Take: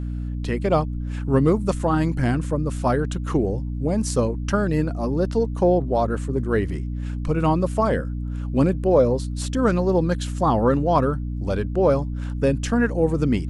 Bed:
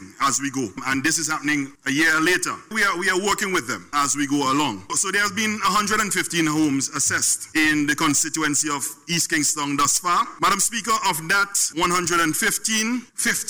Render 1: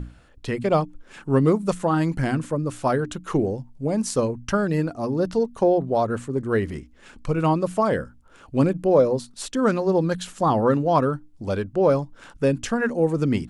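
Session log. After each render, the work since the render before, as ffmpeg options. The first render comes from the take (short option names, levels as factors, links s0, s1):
-af "bandreject=f=60:t=h:w=6,bandreject=f=120:t=h:w=6,bandreject=f=180:t=h:w=6,bandreject=f=240:t=h:w=6,bandreject=f=300:t=h:w=6"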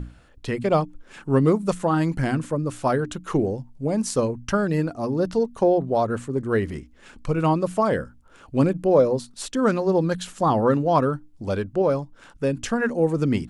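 -filter_complex "[0:a]asplit=3[s0][s1][s2];[s0]atrim=end=11.822[s3];[s1]atrim=start=11.818:end=12.572,asetpts=PTS-STARTPTS,volume=0.708[s4];[s2]atrim=start=12.568[s5];[s3][s4]acrossfade=d=0.004:c1=hsin:c2=hsin[s6];[s6][s5]acrossfade=d=0.004:c1=hsin:c2=hsin"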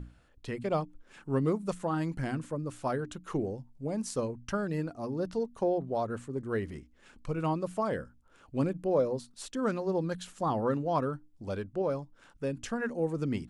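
-af "volume=0.316"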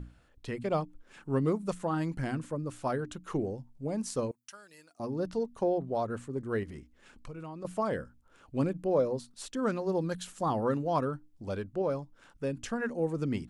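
-filter_complex "[0:a]asettb=1/sr,asplit=3[s0][s1][s2];[s0]atrim=end=4.314[s3];[s1]atrim=start=4.31:end=5,asetpts=PTS-STARTPTS,afade=t=in:d=0.004:c=qsin,afade=t=out:st=0.686:d=0.004:c=qsin,aderivative[s4];[s2]atrim=start=4.996[s5];[s3][s4]acrossfade=d=0.004:c1=hsin:c2=qsin[s6];[s6][s5]acrossfade=d=0.004:c1=qsin:c2=hsin,asettb=1/sr,asplit=3[s7][s8][s9];[s7]atrim=end=6.634[s10];[s8]atrim=start=6.63:end=7.65,asetpts=PTS-STARTPTS,afade=t=in:d=0.004:c=qsin,afade=t=out:st=1.016:d=0.004:c=qsin,acompressor=threshold=0.0112:ratio=6:attack=3.2:release=140:knee=1:detection=peak[s11];[s9]atrim=start=7.646[s12];[s10][s11]acrossfade=d=0.004:c1=hsin:c2=qsin[s13];[s13][s12]acrossfade=d=0.004:c1=qsin:c2=hsin,asettb=1/sr,asplit=3[s14][s15][s16];[s14]atrim=end=9.864[s17];[s15]atrim=start=9.86:end=11.05,asetpts=PTS-STARTPTS,afade=t=in:d=0.004:c=qsin,afade=t=out:st=1.186:d=0.004:c=qsin,highshelf=f=7700:g=7[s18];[s16]atrim=start=11.046[s19];[s17][s18]acrossfade=d=0.004:c1=hsin:c2=qsin[s20];[s20][s19]acrossfade=d=0.004:c1=qsin:c2=hsin"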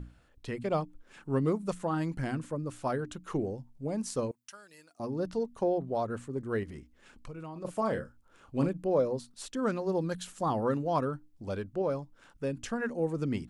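-filter_complex "[0:a]asettb=1/sr,asplit=3[s0][s1][s2];[s0]atrim=end=7.524[s3];[s1]atrim=start=7.52:end=8.69,asetpts=PTS-STARTPTS,afade=t=in:d=0.004:c=qsin,afade=t=out:st=1.166:d=0.004:c=qsin,asplit=2[s4][s5];[s5]adelay=36,volume=0.398[s6];[s4][s6]amix=inputs=2:normalize=0,atrim=end_sample=51597[s7];[s2]atrim=start=8.686[s8];[s3][s7]acrossfade=d=0.004:c1=hsin:c2=qsin[s9];[s9][s8]acrossfade=d=0.004:c1=qsin:c2=hsin"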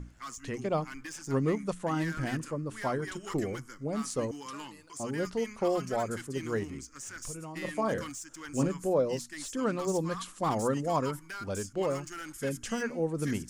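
-filter_complex "[1:a]volume=0.075[s0];[0:a][s0]amix=inputs=2:normalize=0"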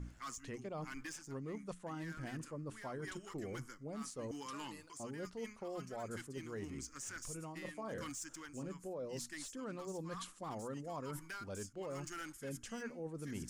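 -af "alimiter=limit=0.0794:level=0:latency=1:release=224,areverse,acompressor=threshold=0.00708:ratio=5,areverse"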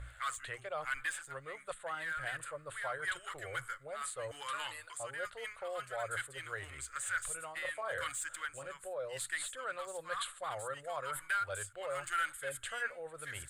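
-af "firequalizer=gain_entry='entry(110,0);entry(200,-27);entry(550,7);entry(940,2);entry(1400,15);entry(2600,8);entry(3700,13);entry(5600,-13);entry(8100,12);entry(15000,1)':delay=0.05:min_phase=1"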